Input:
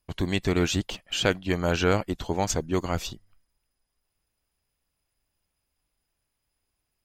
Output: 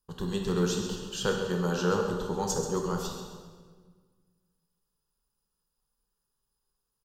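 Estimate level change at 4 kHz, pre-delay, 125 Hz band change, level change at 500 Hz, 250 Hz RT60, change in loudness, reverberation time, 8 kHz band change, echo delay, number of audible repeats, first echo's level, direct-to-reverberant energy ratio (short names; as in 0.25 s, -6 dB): -6.5 dB, 14 ms, -4.0 dB, -2.0 dB, 1.9 s, -3.5 dB, 1.6 s, -2.0 dB, 0.134 s, 1, -10.5 dB, 1.0 dB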